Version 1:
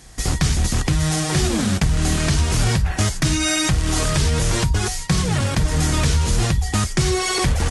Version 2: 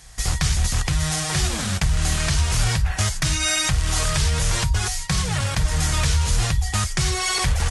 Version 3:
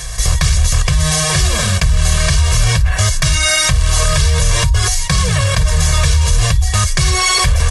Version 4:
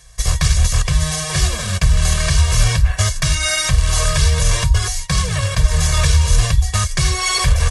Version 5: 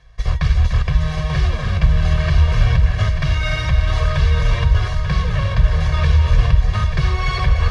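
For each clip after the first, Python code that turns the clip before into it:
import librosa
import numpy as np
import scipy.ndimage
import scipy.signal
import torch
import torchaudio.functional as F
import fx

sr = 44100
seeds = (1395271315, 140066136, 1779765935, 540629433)

y1 = fx.peak_eq(x, sr, hz=290.0, db=-13.5, octaves=1.5)
y2 = y1 + 0.97 * np.pad(y1, (int(1.8 * sr / 1000.0), 0))[:len(y1)]
y2 = fx.env_flatten(y2, sr, amount_pct=50)
y2 = y2 * 10.0 ** (1.0 / 20.0)
y3 = fx.upward_expand(y2, sr, threshold_db=-24.0, expansion=2.5)
y3 = y3 * 10.0 ** (2.0 / 20.0)
y4 = fx.air_absorb(y3, sr, metres=310.0)
y4 = fx.echo_heads(y4, sr, ms=296, heads='first and third', feedback_pct=42, wet_db=-8.5)
y4 = y4 * 10.0 ** (-1.0 / 20.0)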